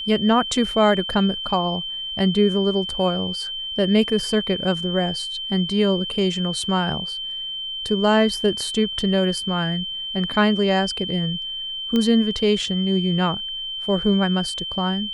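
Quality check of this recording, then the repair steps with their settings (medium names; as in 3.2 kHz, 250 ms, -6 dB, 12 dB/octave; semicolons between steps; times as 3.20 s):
whine 3.1 kHz -27 dBFS
11.96 s: pop -10 dBFS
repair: de-click; band-stop 3.1 kHz, Q 30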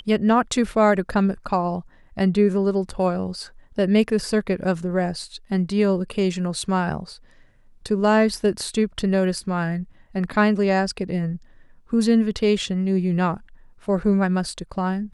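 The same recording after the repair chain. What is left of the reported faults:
nothing left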